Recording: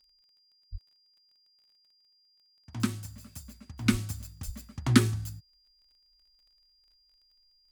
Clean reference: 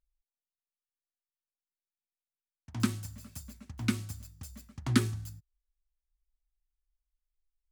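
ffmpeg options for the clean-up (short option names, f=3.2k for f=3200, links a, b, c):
-filter_complex "[0:a]adeclick=t=4,bandreject=f=4.8k:w=30,asplit=3[a][b][c];[a]afade=t=out:st=0.71:d=0.02[d];[b]highpass=f=140:w=0.5412,highpass=f=140:w=1.3066,afade=t=in:st=0.71:d=0.02,afade=t=out:st=0.83:d=0.02[e];[c]afade=t=in:st=0.83:d=0.02[f];[d][e][f]amix=inputs=3:normalize=0,asplit=3[g][h][i];[g]afade=t=out:st=3.91:d=0.02[j];[h]highpass=f=140:w=0.5412,highpass=f=140:w=1.3066,afade=t=in:st=3.91:d=0.02,afade=t=out:st=4.03:d=0.02[k];[i]afade=t=in:st=4.03:d=0.02[l];[j][k][l]amix=inputs=3:normalize=0,asplit=3[m][n][o];[m]afade=t=out:st=4.45:d=0.02[p];[n]highpass=f=140:w=0.5412,highpass=f=140:w=1.3066,afade=t=in:st=4.45:d=0.02,afade=t=out:st=4.57:d=0.02[q];[o]afade=t=in:st=4.57:d=0.02[r];[p][q][r]amix=inputs=3:normalize=0,asetnsamples=n=441:p=0,asendcmd='3.86 volume volume -5dB',volume=0dB"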